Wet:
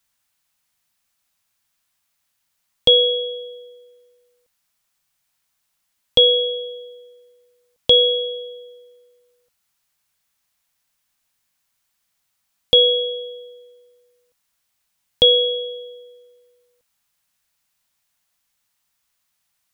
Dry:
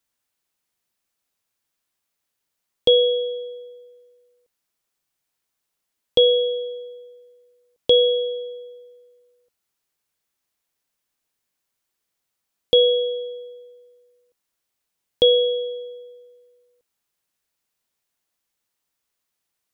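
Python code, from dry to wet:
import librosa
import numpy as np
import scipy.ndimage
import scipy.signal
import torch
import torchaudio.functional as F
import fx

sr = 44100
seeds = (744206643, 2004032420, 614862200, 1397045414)

y = fx.peak_eq(x, sr, hz=390.0, db=-15.0, octaves=0.82)
y = y * 10.0 ** (7.0 / 20.0)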